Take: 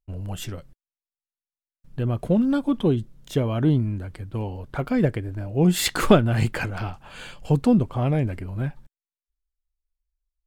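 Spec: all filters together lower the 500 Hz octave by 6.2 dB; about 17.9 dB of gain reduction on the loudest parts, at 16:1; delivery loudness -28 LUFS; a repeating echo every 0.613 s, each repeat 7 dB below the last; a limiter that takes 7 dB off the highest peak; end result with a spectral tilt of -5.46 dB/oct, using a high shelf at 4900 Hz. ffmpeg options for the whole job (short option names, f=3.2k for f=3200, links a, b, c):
-af "equalizer=f=500:t=o:g=-8,highshelf=f=4.9k:g=7,acompressor=threshold=-29dB:ratio=16,alimiter=level_in=1.5dB:limit=-24dB:level=0:latency=1,volume=-1.5dB,aecho=1:1:613|1226|1839|2452|3065:0.447|0.201|0.0905|0.0407|0.0183,volume=7.5dB"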